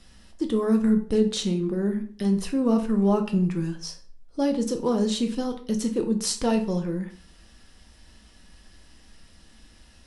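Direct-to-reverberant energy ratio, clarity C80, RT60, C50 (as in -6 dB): 4.5 dB, 16.5 dB, 0.45 s, 11.5 dB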